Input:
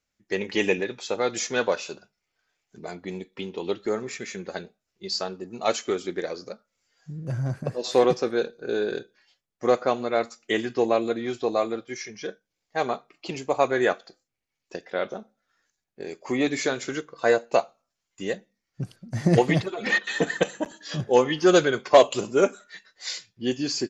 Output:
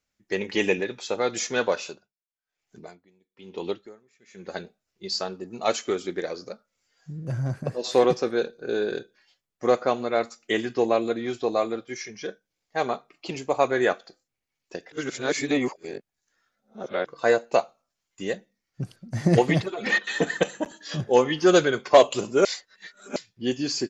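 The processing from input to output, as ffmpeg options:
-filter_complex "[0:a]asplit=3[s0][s1][s2];[s0]afade=t=out:st=1.89:d=0.02[s3];[s1]aeval=exprs='val(0)*pow(10,-30*(0.5-0.5*cos(2*PI*1.1*n/s))/20)':c=same,afade=t=in:st=1.89:d=0.02,afade=t=out:st=4.56:d=0.02[s4];[s2]afade=t=in:st=4.56:d=0.02[s5];[s3][s4][s5]amix=inputs=3:normalize=0,asplit=5[s6][s7][s8][s9][s10];[s6]atrim=end=14.922[s11];[s7]atrim=start=14.918:end=17.062,asetpts=PTS-STARTPTS,areverse[s12];[s8]atrim=start=17.058:end=22.452[s13];[s9]atrim=start=22.448:end=23.162,asetpts=PTS-STARTPTS,areverse[s14];[s10]atrim=start=23.158[s15];[s11][s12]acrossfade=d=0.004:c1=hsin:c2=hsin[s16];[s16][s13]acrossfade=d=0.004:c1=hsin:c2=hsin[s17];[s17][s14]acrossfade=d=0.004:c1=hsin:c2=hsin[s18];[s18][s15]acrossfade=d=0.004:c1=hsin:c2=hsin"

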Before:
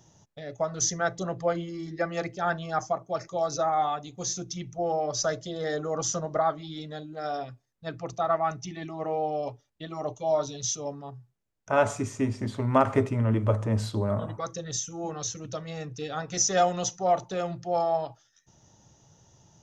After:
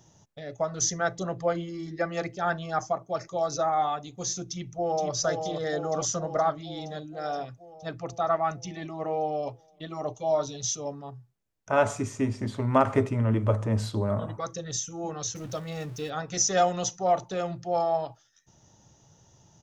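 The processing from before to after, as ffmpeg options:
-filter_complex "[0:a]asplit=2[s0][s1];[s1]afade=t=in:st=4.47:d=0.01,afade=t=out:st=5.11:d=0.01,aecho=0:1:470|940|1410|1880|2350|2820|3290|3760|4230|4700|5170|5640:0.530884|0.371619|0.260133|0.182093|0.127465|0.0892257|0.062458|0.0437206|0.0306044|0.0214231|0.0149962|0.0104973[s2];[s0][s2]amix=inputs=2:normalize=0,asettb=1/sr,asplit=3[s3][s4][s5];[s3]atrim=end=15.354[s6];[s4]atrim=start=15.35:end=16.1,asetpts=PTS-STARTPTS,afade=t=in:d=0.004:c=qsin,afade=t=out:st=0.746:d=0.004:c=qsin,aeval=exprs='val(0)+0.5*0.00668*sgn(val(0))':c=same[s7];[s5]atrim=start=16.096[s8];[s6][s7]acrossfade=d=0.004:c1=hsin:c2=qsin[s9];[s9][s8]acrossfade=d=0.004:c1=qsin:c2=hsin"

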